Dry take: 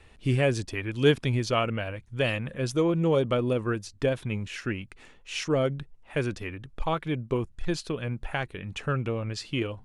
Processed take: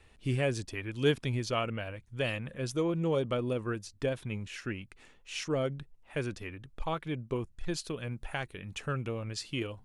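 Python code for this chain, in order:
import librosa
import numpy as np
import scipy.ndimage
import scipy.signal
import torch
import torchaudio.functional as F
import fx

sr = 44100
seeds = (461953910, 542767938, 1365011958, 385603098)

y = fx.high_shelf(x, sr, hz=5800.0, db=fx.steps((0.0, 4.0), (7.75, 10.5)))
y = y * 10.0 ** (-6.0 / 20.0)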